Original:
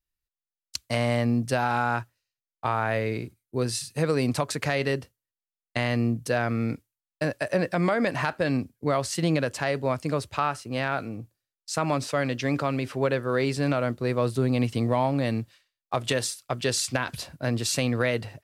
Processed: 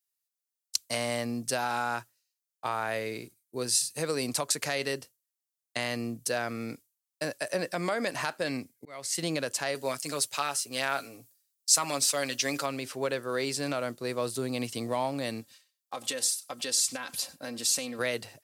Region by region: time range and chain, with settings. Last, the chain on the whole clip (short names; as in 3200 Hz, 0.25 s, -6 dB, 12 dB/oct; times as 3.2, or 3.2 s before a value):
8.48–9.18 bell 2100 Hz +12 dB 0.22 oct + auto swell 0.47 s
9.75–12.66 tilt +2 dB/oct + comb 7.3 ms, depth 52%
15.41–17.99 comb 3.8 ms, depth 60% + compressor 2:1, threshold -31 dBFS + echo 96 ms -21.5 dB
whole clip: Bessel high-pass 150 Hz; tone controls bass -5 dB, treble +13 dB; gain -5 dB